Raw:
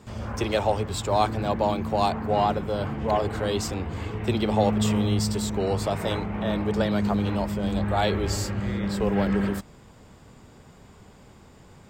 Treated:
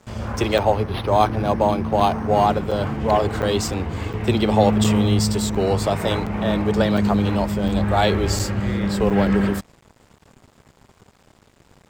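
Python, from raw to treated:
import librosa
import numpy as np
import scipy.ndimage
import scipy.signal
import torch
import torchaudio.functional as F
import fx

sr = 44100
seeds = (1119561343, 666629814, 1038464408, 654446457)

y = np.sign(x) * np.maximum(np.abs(x) - 10.0 ** (-49.0 / 20.0), 0.0)
y = fx.buffer_crackle(y, sr, first_s=0.58, period_s=0.71, block=256, kind='zero')
y = fx.resample_linear(y, sr, factor=6, at=(0.59, 2.47))
y = F.gain(torch.from_numpy(y), 6.0).numpy()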